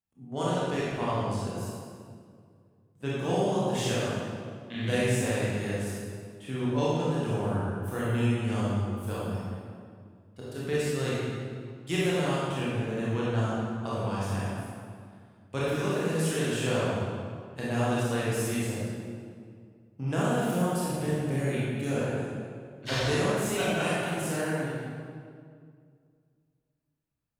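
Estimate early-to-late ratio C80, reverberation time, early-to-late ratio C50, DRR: −1.5 dB, 2.1 s, −4.5 dB, −8.5 dB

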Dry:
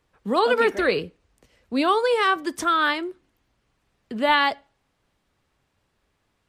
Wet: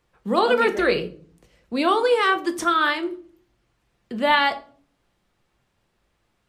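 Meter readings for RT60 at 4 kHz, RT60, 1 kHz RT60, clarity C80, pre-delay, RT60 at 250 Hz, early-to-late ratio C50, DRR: 0.30 s, 0.50 s, 0.40 s, 19.5 dB, 6 ms, 0.80 s, 15.5 dB, 7.0 dB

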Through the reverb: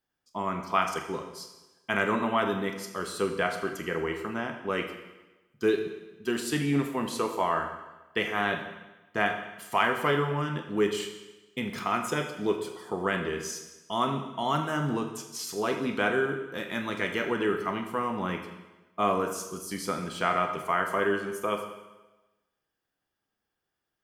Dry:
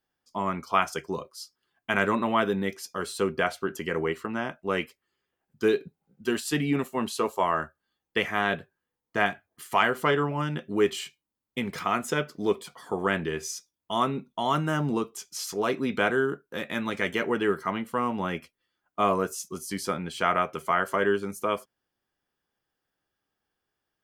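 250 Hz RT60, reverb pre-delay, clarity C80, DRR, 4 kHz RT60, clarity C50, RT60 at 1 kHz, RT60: 1.1 s, 28 ms, 9.0 dB, 5.0 dB, 1.1 s, 7.5 dB, 1.1 s, 1.1 s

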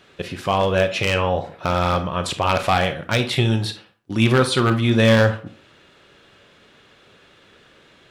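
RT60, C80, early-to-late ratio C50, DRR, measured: 0.45 s, 17.0 dB, 12.0 dB, 8.0 dB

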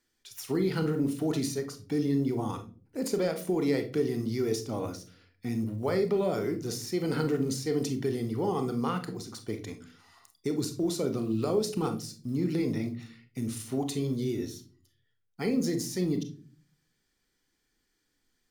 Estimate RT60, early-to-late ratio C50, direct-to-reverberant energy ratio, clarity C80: 0.40 s, 12.0 dB, 7.0 dB, 19.0 dB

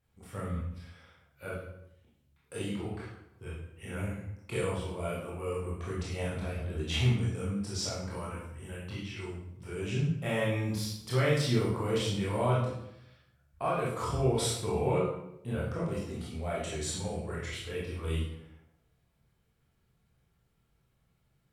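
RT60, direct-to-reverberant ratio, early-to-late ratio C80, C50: 0.80 s, −7.0 dB, 5.5 dB, 1.0 dB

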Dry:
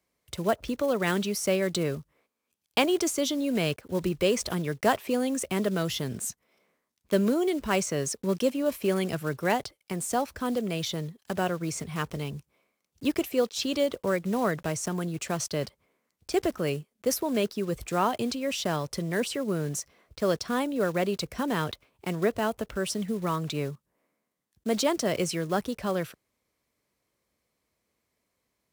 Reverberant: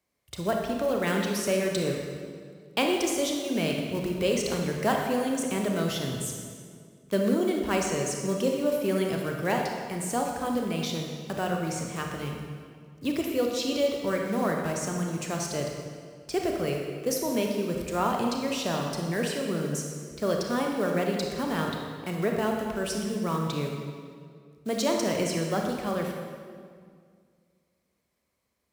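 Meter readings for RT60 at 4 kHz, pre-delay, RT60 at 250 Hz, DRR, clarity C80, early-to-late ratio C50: 1.6 s, 28 ms, 2.3 s, 1.0 dB, 3.5 dB, 2.0 dB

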